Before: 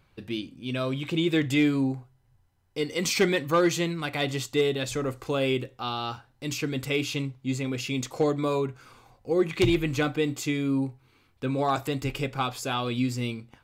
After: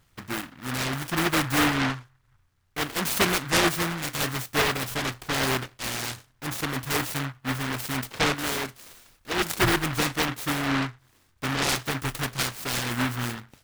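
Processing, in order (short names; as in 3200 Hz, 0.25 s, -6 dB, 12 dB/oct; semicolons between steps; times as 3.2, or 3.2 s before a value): 8.34–9.56 graphic EQ 125/500/1000/2000/4000/8000 Hz -9/-4/-5/+7/+7/+12 dB; noise-modulated delay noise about 1300 Hz, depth 0.47 ms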